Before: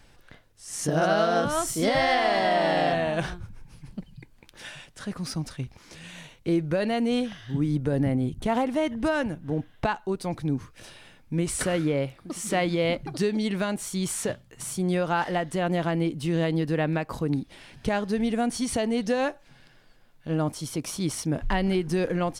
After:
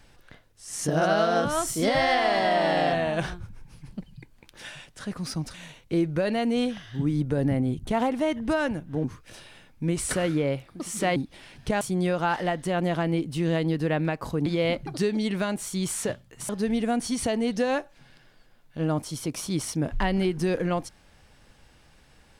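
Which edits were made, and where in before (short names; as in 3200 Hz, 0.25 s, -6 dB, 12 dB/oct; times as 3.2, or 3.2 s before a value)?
5.54–6.09 cut
9.59–10.54 cut
12.66–14.69 swap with 17.34–17.99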